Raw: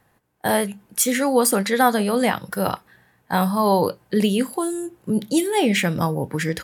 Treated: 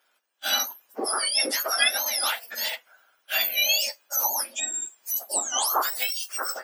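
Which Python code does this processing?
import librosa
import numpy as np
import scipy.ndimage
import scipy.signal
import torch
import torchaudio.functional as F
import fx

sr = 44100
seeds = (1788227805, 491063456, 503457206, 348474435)

y = fx.octave_mirror(x, sr, pivot_hz=1600.0)
y = scipy.signal.sosfilt(scipy.signal.butter(4, 570.0, 'highpass', fs=sr, output='sos'), y)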